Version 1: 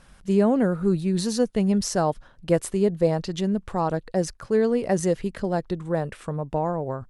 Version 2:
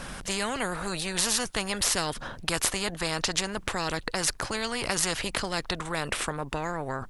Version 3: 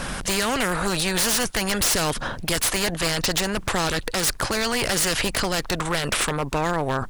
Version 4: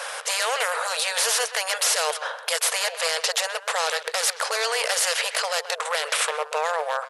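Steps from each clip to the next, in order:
low-shelf EQ 100 Hz +10.5 dB; every bin compressed towards the loudest bin 4 to 1
in parallel at −1 dB: brickwall limiter −16 dBFS, peak gain reduction 8.5 dB; on the sum: wave folding −18.5 dBFS; level +3.5 dB
far-end echo of a speakerphone 130 ms, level −10 dB; brick-wall band-pass 440–12,000 Hz

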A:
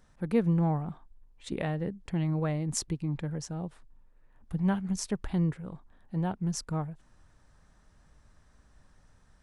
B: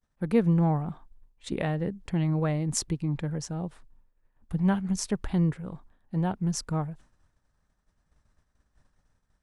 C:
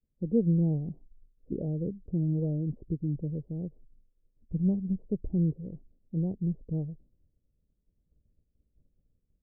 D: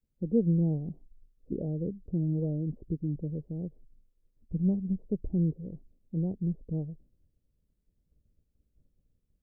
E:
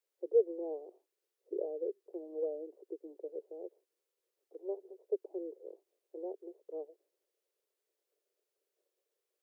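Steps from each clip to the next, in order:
downward expander −49 dBFS; level +3 dB
Butterworth low-pass 510 Hz 36 dB per octave; level −2 dB
dynamic equaliser 130 Hz, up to −5 dB, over −46 dBFS, Q 4.8
Butterworth high-pass 370 Hz 72 dB per octave; level +3.5 dB

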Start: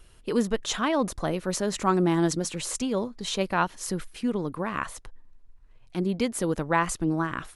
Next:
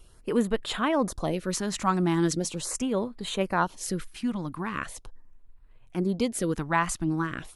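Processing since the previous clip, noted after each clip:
auto-filter notch sine 0.4 Hz 420–6,200 Hz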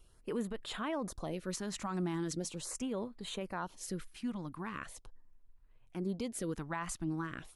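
brickwall limiter −19 dBFS, peak gain reduction 8.5 dB
level −9 dB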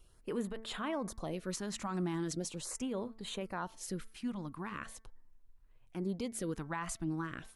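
hum removal 222.6 Hz, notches 10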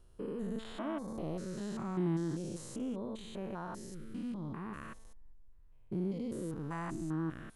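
spectrum averaged block by block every 200 ms
tilt shelving filter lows +4.5 dB, about 1,200 Hz

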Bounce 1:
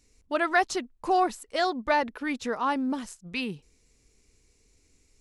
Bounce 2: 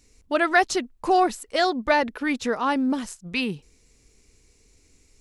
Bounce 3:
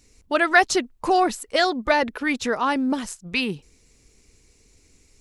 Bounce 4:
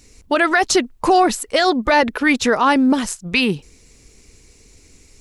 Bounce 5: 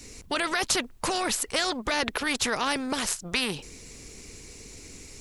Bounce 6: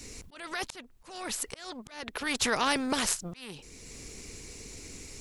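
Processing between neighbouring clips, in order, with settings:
dynamic equaliser 1,000 Hz, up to −4 dB, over −38 dBFS, Q 1.9; level +5.5 dB
harmonic and percussive parts rebalanced harmonic −4 dB; level +4 dB
brickwall limiter −14 dBFS, peak gain reduction 11 dB; level +8.5 dB
every bin compressed towards the loudest bin 2 to 1; level −4 dB
volume swells 647 ms

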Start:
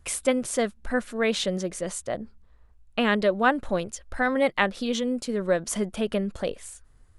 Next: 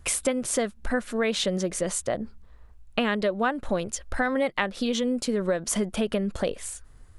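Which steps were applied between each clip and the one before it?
downward compressor 4 to 1, threshold −29 dBFS, peak gain reduction 12 dB
level +6 dB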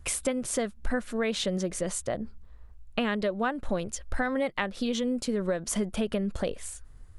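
low-shelf EQ 150 Hz +6 dB
level −4 dB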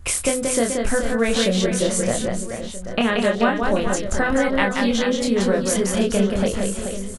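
double-tracking delay 26 ms −3.5 dB
reverse bouncing-ball delay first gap 180 ms, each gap 1.4×, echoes 5
level +6.5 dB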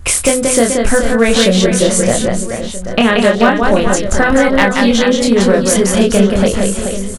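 hard clipping −11 dBFS, distortion −25 dB
level +9 dB

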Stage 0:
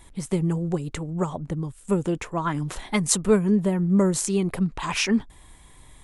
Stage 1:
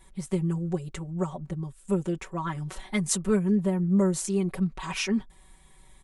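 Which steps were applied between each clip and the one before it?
comb filter 5.3 ms, depth 97%
level −8.5 dB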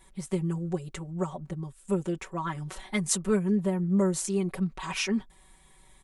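low-shelf EQ 190 Hz −4.5 dB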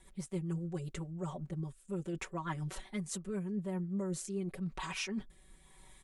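reversed playback
downward compressor 6 to 1, threshold −33 dBFS, peak gain reduction 12.5 dB
reversed playback
rotating-speaker cabinet horn 7.5 Hz, later 0.9 Hz, at 0:02.89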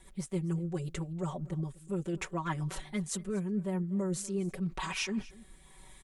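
single-tap delay 241 ms −21 dB
level +4 dB

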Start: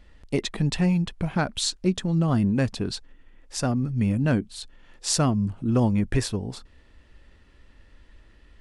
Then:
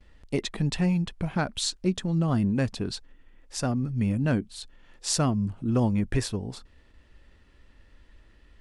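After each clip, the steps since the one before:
noise gate with hold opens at −46 dBFS
level −2.5 dB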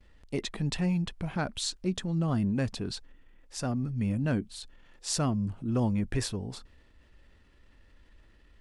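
transient designer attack −2 dB, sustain +3 dB
level −3.5 dB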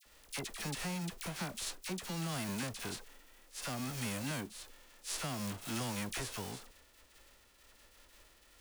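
spectral envelope flattened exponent 0.3
downward compressor 4 to 1, threshold −29 dBFS, peak gain reduction 6.5 dB
all-pass dispersion lows, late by 53 ms, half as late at 1,200 Hz
level −6 dB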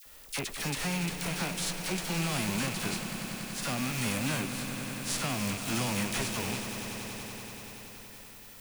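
loose part that buzzes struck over −50 dBFS, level −35 dBFS
background noise violet −60 dBFS
echo that builds up and dies away 95 ms, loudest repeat 5, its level −13 dB
level +6 dB

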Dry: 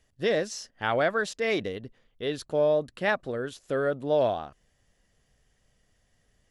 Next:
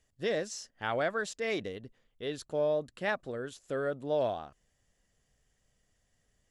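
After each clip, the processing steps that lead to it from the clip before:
parametric band 7,400 Hz +5.5 dB 0.47 octaves
level −6 dB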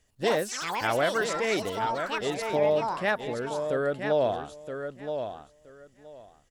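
repeating echo 972 ms, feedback 17%, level −7.5 dB
delay with pitch and tempo change per echo 80 ms, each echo +7 semitones, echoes 3, each echo −6 dB
level +5 dB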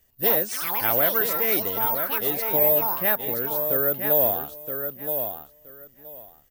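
in parallel at −11 dB: soft clipping −27 dBFS, distortion −9 dB
on the sum: bad sample-rate conversion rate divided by 3×, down filtered, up zero stuff
level −1.5 dB

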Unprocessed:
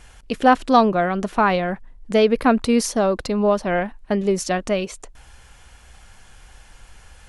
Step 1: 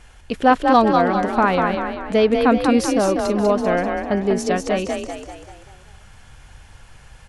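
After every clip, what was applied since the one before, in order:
high-shelf EQ 5,200 Hz −5 dB
echo with shifted repeats 195 ms, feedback 48%, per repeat +36 Hz, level −4.5 dB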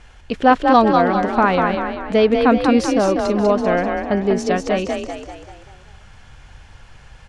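low-pass filter 6,200 Hz 12 dB per octave
level +1.5 dB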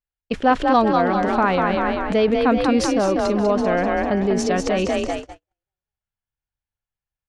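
in parallel at −2 dB: compressor whose output falls as the input rises −24 dBFS, ratio −1
on the sum: noise gate −22 dBFS, range −53 dB
level −4.5 dB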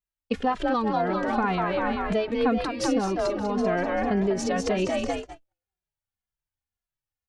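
downward compressor, threshold −18 dBFS, peak gain reduction 7 dB
barber-pole flanger 2.5 ms −1.9 Hz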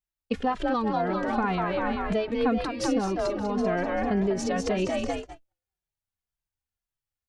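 low-shelf EQ 180 Hz +3 dB
level −2 dB

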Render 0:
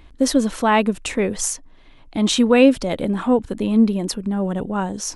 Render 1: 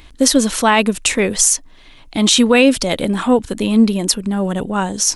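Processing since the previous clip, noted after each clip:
high-shelf EQ 2,200 Hz +12 dB
boost into a limiter +4 dB
level −1 dB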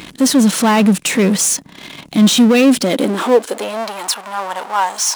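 harmonic and percussive parts rebalanced percussive −4 dB
power curve on the samples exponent 0.5
high-pass filter sweep 170 Hz → 890 Hz, 0:02.60–0:03.99
level −5 dB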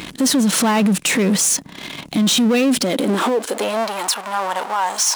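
brickwall limiter −12.5 dBFS, peak gain reduction 11.5 dB
level +2 dB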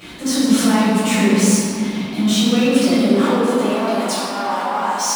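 convolution reverb RT60 3.0 s, pre-delay 6 ms, DRR −14 dB
level −16 dB

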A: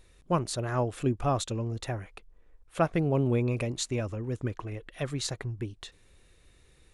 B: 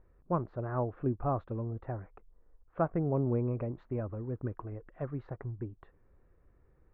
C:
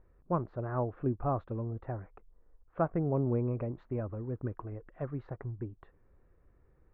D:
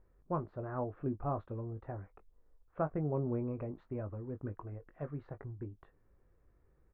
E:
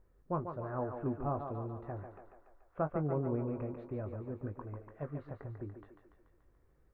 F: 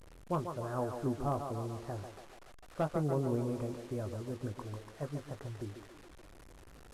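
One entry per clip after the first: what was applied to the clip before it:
low-pass filter 1,400 Hz 24 dB per octave; level −4 dB
no processing that can be heard
double-tracking delay 20 ms −9 dB; level −4.5 dB
feedback echo with a high-pass in the loop 144 ms, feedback 62%, high-pass 280 Hz, level −6 dB
linear delta modulator 64 kbit/s, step −50 dBFS; level +1.5 dB

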